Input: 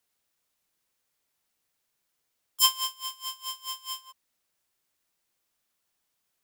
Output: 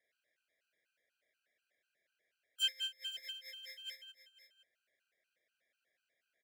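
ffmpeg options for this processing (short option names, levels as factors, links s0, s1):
-filter_complex "[0:a]asplit=2[s0][s1];[s1]highpass=f=720:p=1,volume=3.98,asoftclip=type=tanh:threshold=0.596[s2];[s0][s2]amix=inputs=2:normalize=0,lowpass=f=1300:p=1,volume=0.501,asplit=2[s3][s4];[s4]acompressor=threshold=0.0112:ratio=6,volume=1.26[s5];[s3][s5]amix=inputs=2:normalize=0,asuperstop=centerf=1000:order=8:qfactor=1.1,acrossover=split=590 2300:gain=0.141 1 0.2[s6][s7][s8];[s6][s7][s8]amix=inputs=3:normalize=0,aecho=1:1:518:0.224,afftfilt=real='re*gt(sin(2*PI*4.1*pts/sr)*(1-2*mod(floor(b*sr/1024/800),2)),0)':imag='im*gt(sin(2*PI*4.1*pts/sr)*(1-2*mod(floor(b*sr/1024/800),2)),0)':win_size=1024:overlap=0.75,volume=1.26"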